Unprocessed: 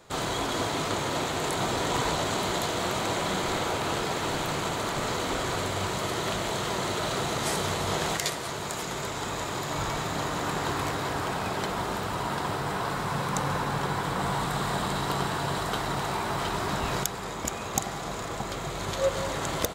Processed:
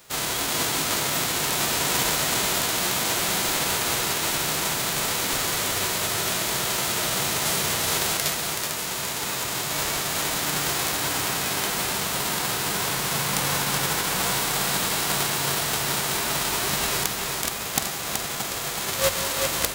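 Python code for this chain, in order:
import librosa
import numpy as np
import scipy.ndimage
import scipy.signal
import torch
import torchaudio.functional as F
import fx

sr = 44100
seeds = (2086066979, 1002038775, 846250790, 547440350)

y = fx.envelope_flatten(x, sr, power=0.3)
y = fx.hum_notches(y, sr, base_hz=50, count=2)
y = y + 10.0 ** (-5.0 / 20.0) * np.pad(y, (int(376 * sr / 1000.0), 0))[:len(y)]
y = y * 10.0 ** (3.0 / 20.0)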